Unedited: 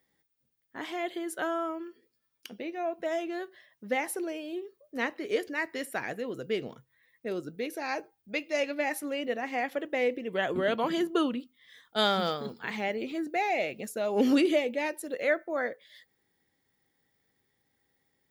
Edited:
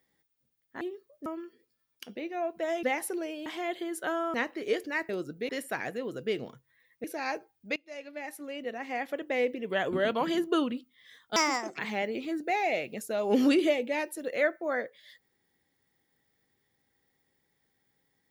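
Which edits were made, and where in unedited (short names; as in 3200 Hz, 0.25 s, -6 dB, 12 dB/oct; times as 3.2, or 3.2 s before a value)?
0.81–1.69 swap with 4.52–4.97
3.26–3.89 cut
7.27–7.67 move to 5.72
8.39–10.12 fade in, from -19.5 dB
11.99–12.65 speed 155%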